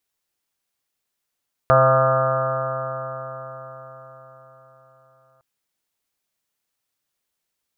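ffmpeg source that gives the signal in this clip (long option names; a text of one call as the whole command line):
ffmpeg -f lavfi -i "aevalsrc='0.112*pow(10,-3*t/4.77)*sin(2*PI*130.06*t)+0.0168*pow(10,-3*t/4.77)*sin(2*PI*260.52*t)+0.015*pow(10,-3*t/4.77)*sin(2*PI*391.75*t)+0.133*pow(10,-3*t/4.77)*sin(2*PI*524.14*t)+0.178*pow(10,-3*t/4.77)*sin(2*PI*658.07*t)+0.0447*pow(10,-3*t/4.77)*sin(2*PI*793.92*t)+0.0422*pow(10,-3*t/4.77)*sin(2*PI*932.03*t)+0.0501*pow(10,-3*t/4.77)*sin(2*PI*1072.76*t)+0.158*pow(10,-3*t/4.77)*sin(2*PI*1216.46*t)+0.0794*pow(10,-3*t/4.77)*sin(2*PI*1363.45*t)+0.0282*pow(10,-3*t/4.77)*sin(2*PI*1514.05*t)+0.02*pow(10,-3*t/4.77)*sin(2*PI*1668.54*t)':duration=3.71:sample_rate=44100" out.wav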